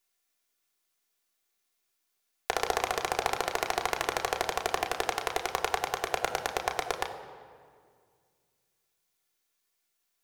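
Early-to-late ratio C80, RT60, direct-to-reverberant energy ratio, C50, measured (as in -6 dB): 10.5 dB, 2.0 s, 1.0 dB, 9.5 dB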